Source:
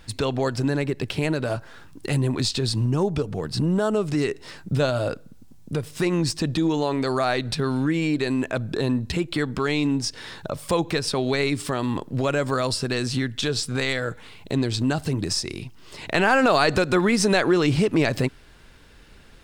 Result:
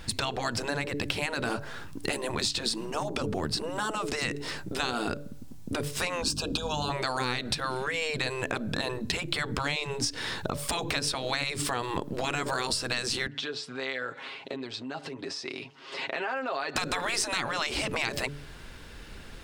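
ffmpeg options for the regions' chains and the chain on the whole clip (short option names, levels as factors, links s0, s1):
-filter_complex "[0:a]asettb=1/sr,asplit=3[s0][s1][s2];[s0]atrim=end=6.224[s3];[s1]atrim=start=6.22:end=6.9,asetpts=PTS-STARTPTS,afade=t=in:d=0.004:c=qsin,afade=t=out:st=0.676:d=0.004:c=qsin,asuperstop=centerf=2000:order=20:qfactor=2.7,bandreject=f=60:t=h:w=6,bandreject=f=120:t=h:w=6,bandreject=f=180:t=h:w=6,bandreject=f=240:t=h:w=6,bandreject=f=300:t=h:w=6,bandreject=f=360:t=h:w=6,bandreject=f=420:t=h:w=6,bandreject=f=480:t=h:w=6,bandreject=f=540:t=h:w=6,aeval=exprs='val(0)+0.0251*(sin(2*PI*50*n/s)+sin(2*PI*2*50*n/s)/2+sin(2*PI*3*50*n/s)/3+sin(2*PI*4*50*n/s)/4+sin(2*PI*5*50*n/s)/5)':c=same[s4];[s2]atrim=start=6.896[s5];[s3][s4]acrossfade=d=0.004:c1=hsin:c2=qsin[s6];[s6][s5]acrossfade=d=0.004:c1=qsin:c2=hsin,asettb=1/sr,asplit=3[s7][s8][s9];[s7]atrim=end=13.274[s10];[s8]atrim=start=13.27:end=16.76,asetpts=PTS-STARTPTS,afade=t=in:d=0.004:c=qsin,afade=t=out:st=3.486:d=0.004:c=qsin,aecho=1:1:7.4:0.74,atrim=end_sample=153909,acompressor=threshold=0.0251:ratio=6:attack=3.2:release=140:knee=1:detection=peak,highpass=390,lowpass=3900[s11];[s9]atrim=start=16.756[s12];[s10][s11]acrossfade=d=0.004:c1=hsin:c2=qsin[s13];[s13][s12]acrossfade=d=0.004:c1=qsin:c2=hsin,bandreject=f=144:t=h:w=4,bandreject=f=288:t=h:w=4,bandreject=f=432:t=h:w=4,bandreject=f=576:t=h:w=4,afftfilt=real='re*lt(hypot(re,im),0.224)':imag='im*lt(hypot(re,im),0.224)':win_size=1024:overlap=0.75,acompressor=threshold=0.0282:ratio=6,volume=1.78"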